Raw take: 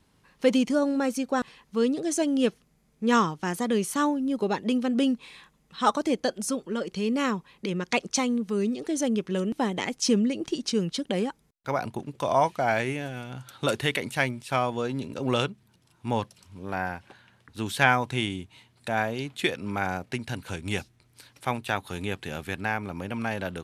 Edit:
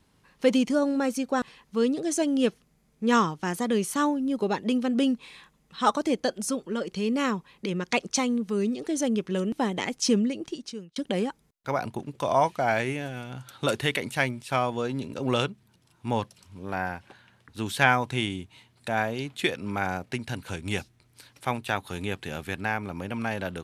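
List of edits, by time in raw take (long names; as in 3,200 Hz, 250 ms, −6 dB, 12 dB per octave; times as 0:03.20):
0:10.15–0:10.96: fade out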